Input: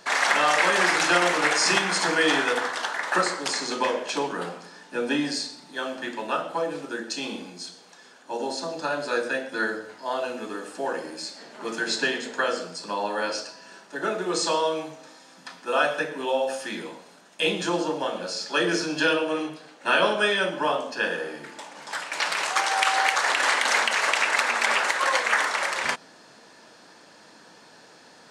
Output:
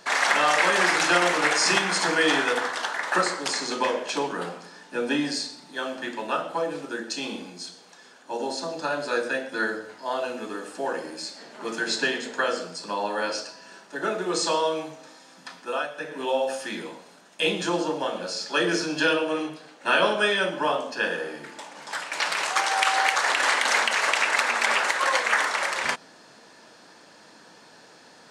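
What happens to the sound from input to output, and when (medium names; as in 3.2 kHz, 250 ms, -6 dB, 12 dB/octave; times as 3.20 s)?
15.59–16.23 s: dip -10.5 dB, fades 0.28 s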